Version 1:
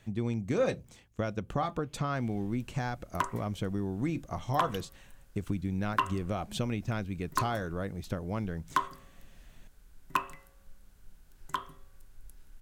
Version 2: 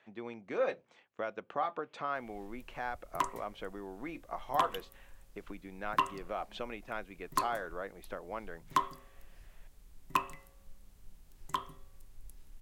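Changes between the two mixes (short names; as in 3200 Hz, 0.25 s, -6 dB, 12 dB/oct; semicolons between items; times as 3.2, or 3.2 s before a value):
speech: add BPF 530–2500 Hz; background: add bell 1500 Hz -10 dB 0.23 oct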